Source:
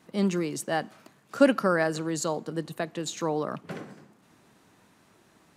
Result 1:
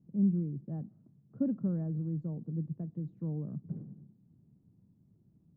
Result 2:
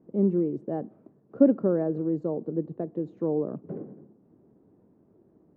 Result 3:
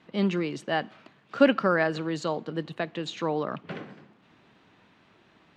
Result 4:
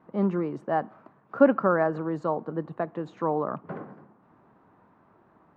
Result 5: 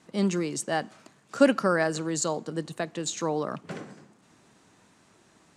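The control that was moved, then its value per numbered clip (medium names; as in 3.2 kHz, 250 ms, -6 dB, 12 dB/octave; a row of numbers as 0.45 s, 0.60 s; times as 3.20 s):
resonant low-pass, frequency: 150 Hz, 410 Hz, 3.2 kHz, 1.1 kHz, 8 kHz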